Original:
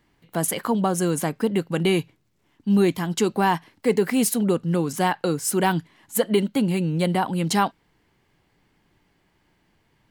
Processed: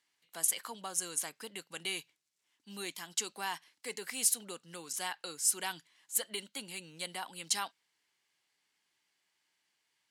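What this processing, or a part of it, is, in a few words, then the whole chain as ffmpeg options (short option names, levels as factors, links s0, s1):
piezo pickup straight into a mixer: -af "lowpass=8400,aderivative"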